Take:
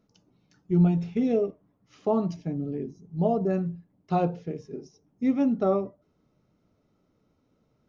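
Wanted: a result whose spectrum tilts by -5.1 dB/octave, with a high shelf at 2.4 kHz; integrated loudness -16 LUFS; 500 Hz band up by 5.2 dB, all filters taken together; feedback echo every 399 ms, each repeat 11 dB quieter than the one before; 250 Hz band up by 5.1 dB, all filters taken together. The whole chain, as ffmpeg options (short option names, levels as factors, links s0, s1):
-af "equalizer=f=250:t=o:g=5.5,equalizer=f=500:t=o:g=5,highshelf=f=2400:g=-3,aecho=1:1:399|798|1197:0.282|0.0789|0.0221,volume=2.11"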